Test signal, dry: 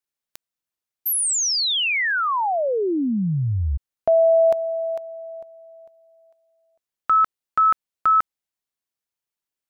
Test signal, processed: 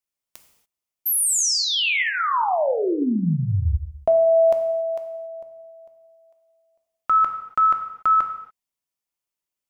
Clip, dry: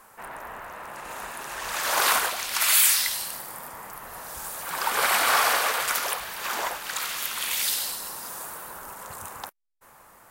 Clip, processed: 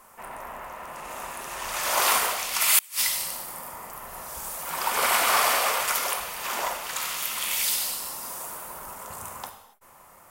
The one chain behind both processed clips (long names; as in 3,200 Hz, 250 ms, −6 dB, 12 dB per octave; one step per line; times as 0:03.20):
thirty-one-band graphic EQ 315 Hz −4 dB, 1,600 Hz −7 dB, 4,000 Hz −4 dB
reverb whose tail is shaped and stops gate 310 ms falling, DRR 4.5 dB
gate with flip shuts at −6 dBFS, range −30 dB